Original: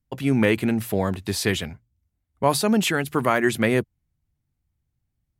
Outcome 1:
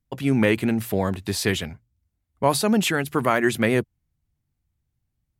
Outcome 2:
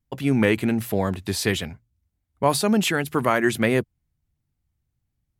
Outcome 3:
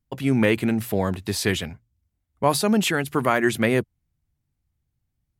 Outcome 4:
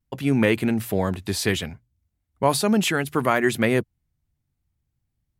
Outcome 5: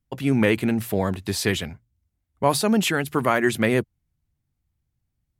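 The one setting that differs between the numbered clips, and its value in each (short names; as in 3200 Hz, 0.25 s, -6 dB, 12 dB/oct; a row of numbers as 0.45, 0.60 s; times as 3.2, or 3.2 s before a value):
vibrato, rate: 9.2, 1.4, 2.5, 0.65, 16 Hz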